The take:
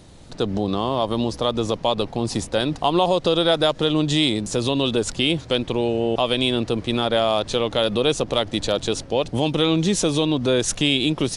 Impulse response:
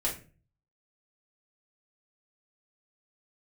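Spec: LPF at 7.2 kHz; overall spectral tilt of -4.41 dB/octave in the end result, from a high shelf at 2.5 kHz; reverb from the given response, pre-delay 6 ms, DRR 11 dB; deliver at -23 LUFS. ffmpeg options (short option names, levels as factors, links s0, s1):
-filter_complex "[0:a]lowpass=7200,highshelf=f=2500:g=3.5,asplit=2[s0][s1];[1:a]atrim=start_sample=2205,adelay=6[s2];[s1][s2]afir=irnorm=-1:irlink=0,volume=0.141[s3];[s0][s3]amix=inputs=2:normalize=0,volume=0.708"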